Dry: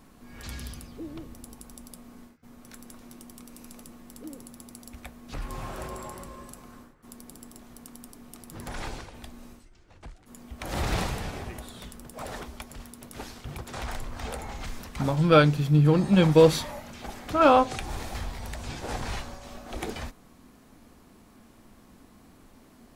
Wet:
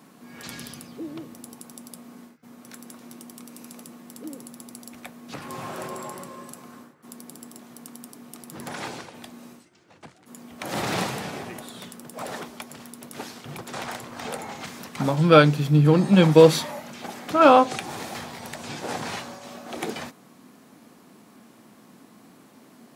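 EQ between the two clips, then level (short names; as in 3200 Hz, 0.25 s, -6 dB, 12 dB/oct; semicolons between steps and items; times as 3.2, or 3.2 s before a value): HPF 140 Hz 24 dB/oct; +4.0 dB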